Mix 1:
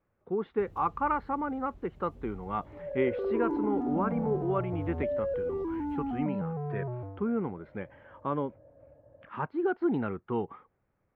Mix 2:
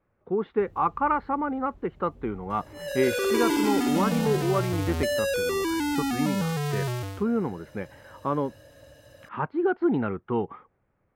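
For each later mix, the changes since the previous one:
speech +4.5 dB
second sound: remove transistor ladder low-pass 950 Hz, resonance 30%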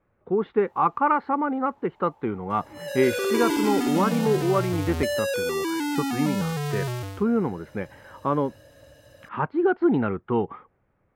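speech +3.0 dB
first sound: add high-pass with resonance 880 Hz, resonance Q 9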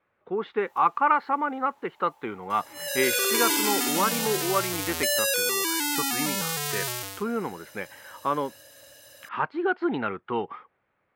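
master: add spectral tilt +4 dB per octave

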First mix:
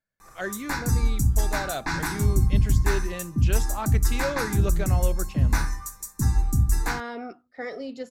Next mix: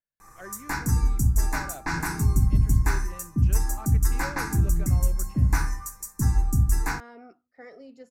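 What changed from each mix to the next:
speech −11.5 dB
master: add parametric band 3,600 Hz −9.5 dB 0.54 octaves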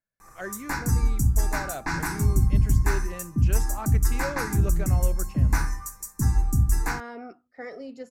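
speech +7.5 dB

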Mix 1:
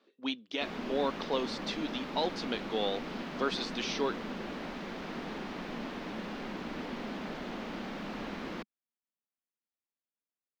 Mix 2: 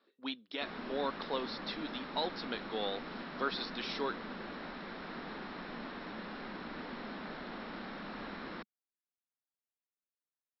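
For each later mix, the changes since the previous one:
master: add Chebyshev low-pass with heavy ripple 5,500 Hz, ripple 6 dB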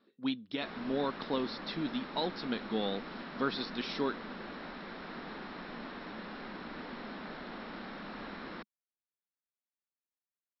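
speech: remove high-pass filter 420 Hz 12 dB per octave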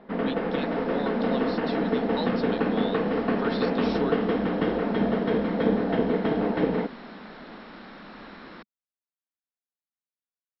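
first sound: unmuted

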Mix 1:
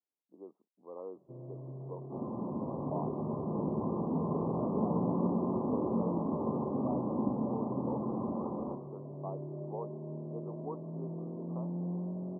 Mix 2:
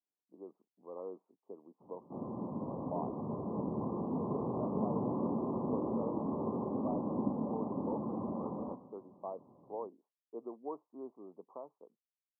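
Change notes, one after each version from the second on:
first sound: muted
second sound: send −6.0 dB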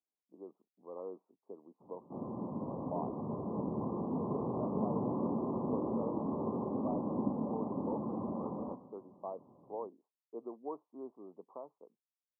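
nothing changed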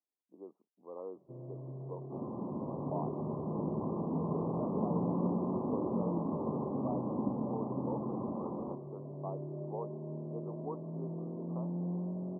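first sound: unmuted

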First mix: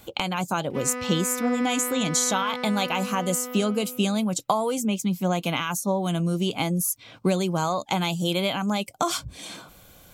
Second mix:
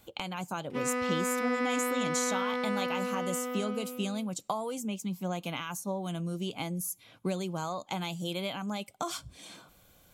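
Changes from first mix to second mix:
speech −10.5 dB
reverb: on

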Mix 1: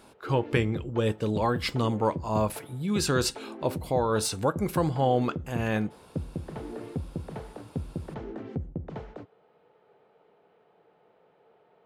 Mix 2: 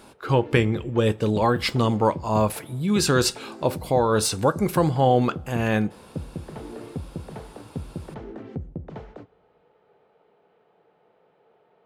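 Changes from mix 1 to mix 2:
speech +5.0 dB
reverb: on

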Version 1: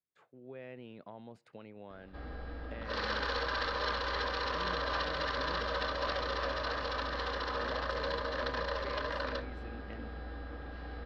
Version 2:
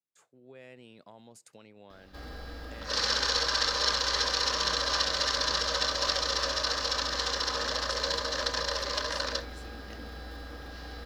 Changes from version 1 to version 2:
speech −4.5 dB
master: remove high-frequency loss of the air 400 metres

